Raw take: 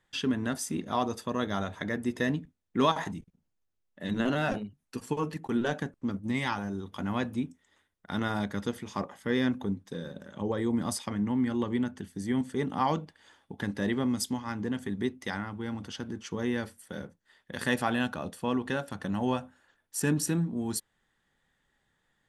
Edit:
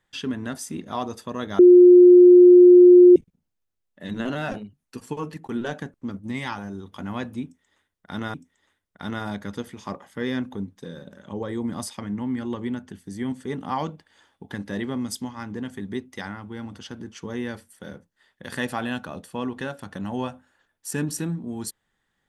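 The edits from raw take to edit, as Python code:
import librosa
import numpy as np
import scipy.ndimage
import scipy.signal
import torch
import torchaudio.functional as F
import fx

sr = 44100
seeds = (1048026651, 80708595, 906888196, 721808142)

y = fx.edit(x, sr, fx.bleep(start_s=1.59, length_s=1.57, hz=357.0, db=-6.5),
    fx.repeat(start_s=7.43, length_s=0.91, count=2), tone=tone)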